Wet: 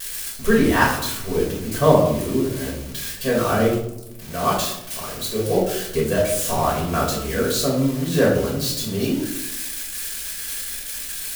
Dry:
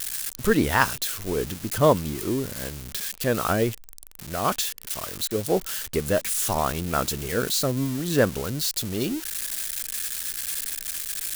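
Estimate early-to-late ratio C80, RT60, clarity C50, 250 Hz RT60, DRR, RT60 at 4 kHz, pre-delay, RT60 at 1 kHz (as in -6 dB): 7.5 dB, 0.90 s, 4.0 dB, 1.2 s, -5.5 dB, 0.50 s, 4 ms, 0.75 s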